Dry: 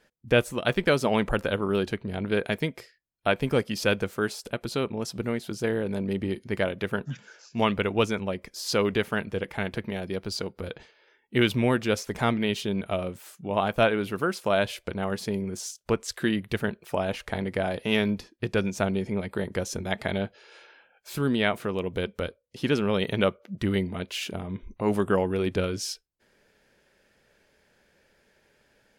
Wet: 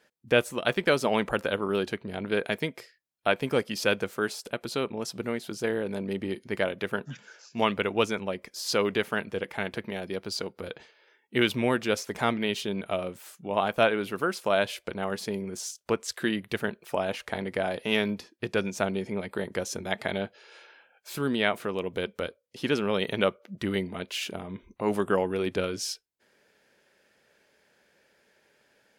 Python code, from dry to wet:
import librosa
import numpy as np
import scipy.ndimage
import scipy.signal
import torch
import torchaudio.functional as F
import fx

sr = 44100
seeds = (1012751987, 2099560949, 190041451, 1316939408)

y = fx.highpass(x, sr, hz=250.0, slope=6)